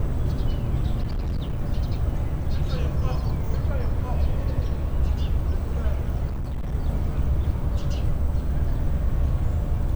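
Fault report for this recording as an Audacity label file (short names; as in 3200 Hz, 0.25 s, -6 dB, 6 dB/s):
1.020000	1.610000	clipped -23 dBFS
6.280000	6.750000	clipped -25 dBFS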